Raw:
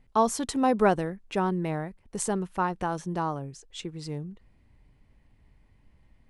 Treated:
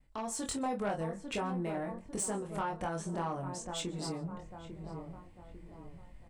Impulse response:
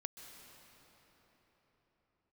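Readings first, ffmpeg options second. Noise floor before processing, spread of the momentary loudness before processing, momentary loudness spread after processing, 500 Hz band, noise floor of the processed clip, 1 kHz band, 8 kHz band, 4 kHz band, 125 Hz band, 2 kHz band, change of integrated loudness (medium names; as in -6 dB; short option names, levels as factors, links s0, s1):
-62 dBFS, 14 LU, 17 LU, -9.0 dB, -55 dBFS, -9.5 dB, -2.5 dB, -2.5 dB, -6.5 dB, -7.5 dB, -8.5 dB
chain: -filter_complex "[0:a]equalizer=f=400:t=o:w=0.33:g=-4,equalizer=f=800:t=o:w=0.33:g=-3,equalizer=f=8000:t=o:w=0.33:g=8,asplit=2[s0][s1];[s1]adelay=848,lowpass=f=1200:p=1,volume=0.2,asplit=2[s2][s3];[s3]adelay=848,lowpass=f=1200:p=1,volume=0.45,asplit=2[s4][s5];[s5]adelay=848,lowpass=f=1200:p=1,volume=0.45,asplit=2[s6][s7];[s7]adelay=848,lowpass=f=1200:p=1,volume=0.45[s8];[s0][s2][s4][s6][s8]amix=inputs=5:normalize=0,agate=range=0.0224:threshold=0.00126:ratio=3:detection=peak,acompressor=threshold=0.0112:ratio=3,flanger=delay=22.5:depth=2.2:speed=0.54,equalizer=f=640:w=1.5:g=3.5,asplit=2[s9][s10];[s10]adelay=26,volume=0.335[s11];[s9][s11]amix=inputs=2:normalize=0,asplit=2[s12][s13];[1:a]atrim=start_sample=2205,atrim=end_sample=6615[s14];[s13][s14]afir=irnorm=-1:irlink=0,volume=0.891[s15];[s12][s15]amix=inputs=2:normalize=0,asoftclip=type=tanh:threshold=0.0335,dynaudnorm=f=110:g=5:m=2.37,volume=0.596"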